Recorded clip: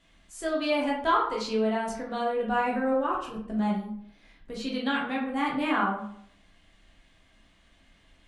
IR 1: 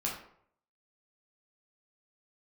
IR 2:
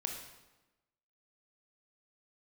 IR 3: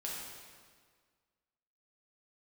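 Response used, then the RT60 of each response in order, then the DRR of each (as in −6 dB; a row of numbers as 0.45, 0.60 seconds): 1; 0.65, 1.1, 1.7 seconds; −4.0, 2.0, −5.0 decibels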